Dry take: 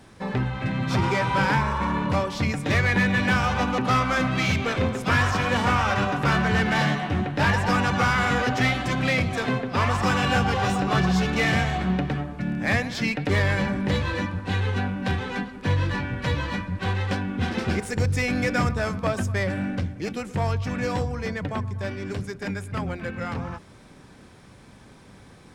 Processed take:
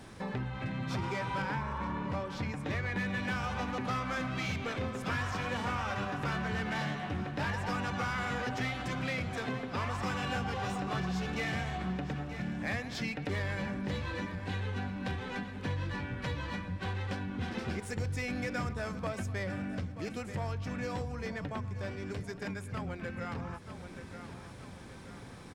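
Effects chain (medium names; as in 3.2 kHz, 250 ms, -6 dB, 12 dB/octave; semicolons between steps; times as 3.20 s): feedback delay 930 ms, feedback 41%, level -16 dB; compression 2:1, threshold -42 dBFS, peak gain reduction 14 dB; 1.42–2.96 s: treble shelf 3.9 kHz -7 dB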